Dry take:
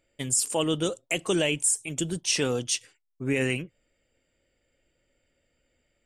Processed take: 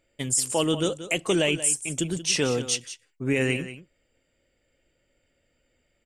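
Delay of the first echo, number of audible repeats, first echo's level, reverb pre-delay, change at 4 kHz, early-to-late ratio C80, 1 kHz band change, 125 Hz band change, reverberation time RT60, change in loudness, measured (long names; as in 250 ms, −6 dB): 182 ms, 1, −13.0 dB, no reverb audible, +2.0 dB, no reverb audible, +2.0 dB, +2.0 dB, no reverb audible, +1.5 dB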